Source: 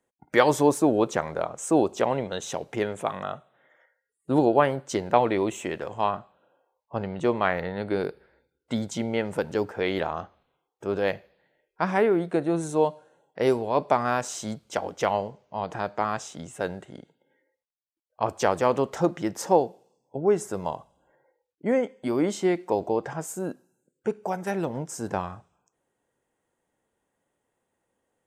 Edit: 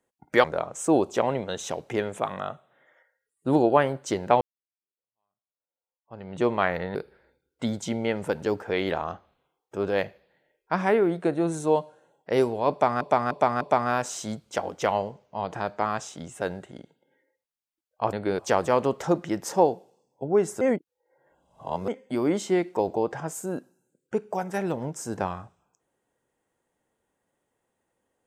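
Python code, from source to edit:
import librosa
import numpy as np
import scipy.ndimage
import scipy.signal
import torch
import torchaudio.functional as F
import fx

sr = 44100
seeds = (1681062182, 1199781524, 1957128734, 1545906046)

y = fx.edit(x, sr, fx.cut(start_s=0.44, length_s=0.83),
    fx.fade_in_span(start_s=5.24, length_s=1.99, curve='exp'),
    fx.move(start_s=7.78, length_s=0.26, to_s=18.32),
    fx.repeat(start_s=13.8, length_s=0.3, count=4),
    fx.reverse_span(start_s=20.54, length_s=1.27), tone=tone)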